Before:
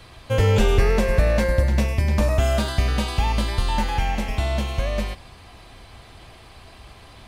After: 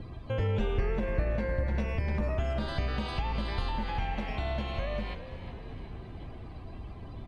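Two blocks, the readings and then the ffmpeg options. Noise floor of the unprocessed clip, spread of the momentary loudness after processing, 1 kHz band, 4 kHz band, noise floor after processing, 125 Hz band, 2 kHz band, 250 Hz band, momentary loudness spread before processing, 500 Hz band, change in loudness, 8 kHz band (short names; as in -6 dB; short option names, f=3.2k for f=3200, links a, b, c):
-46 dBFS, 14 LU, -9.5 dB, -11.5 dB, -44 dBFS, -10.5 dB, -10.5 dB, -9.0 dB, 7 LU, -10.5 dB, -11.0 dB, -25.5 dB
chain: -filter_complex "[0:a]lowpass=f=3.5k:p=1,acrossover=split=330[a][b];[a]acompressor=mode=upward:threshold=-23dB:ratio=2.5[c];[b]alimiter=limit=-24dB:level=0:latency=1:release=92[d];[c][d]amix=inputs=2:normalize=0,lowshelf=f=290:g=-6,asplit=2[e][f];[f]acompressor=threshold=-31dB:ratio=6,volume=0dB[g];[e][g]amix=inputs=2:normalize=0,afftdn=nr=14:nf=-41,asplit=8[h][i][j][k][l][m][n][o];[i]adelay=365,afreqshift=-73,volume=-12.5dB[p];[j]adelay=730,afreqshift=-146,volume=-16.7dB[q];[k]adelay=1095,afreqshift=-219,volume=-20.8dB[r];[l]adelay=1460,afreqshift=-292,volume=-25dB[s];[m]adelay=1825,afreqshift=-365,volume=-29.1dB[t];[n]adelay=2190,afreqshift=-438,volume=-33.3dB[u];[o]adelay=2555,afreqshift=-511,volume=-37.4dB[v];[h][p][q][r][s][t][u][v]amix=inputs=8:normalize=0,volume=-8dB"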